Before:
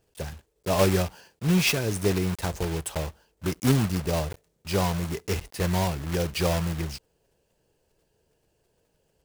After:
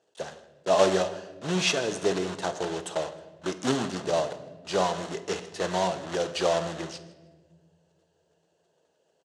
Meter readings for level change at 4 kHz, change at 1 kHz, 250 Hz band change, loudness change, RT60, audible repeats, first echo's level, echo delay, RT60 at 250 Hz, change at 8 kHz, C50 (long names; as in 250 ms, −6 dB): +0.5 dB, +3.0 dB, −5.0 dB, −1.5 dB, 1.3 s, 2, −21.0 dB, 158 ms, 2.2 s, −2.0 dB, 12.5 dB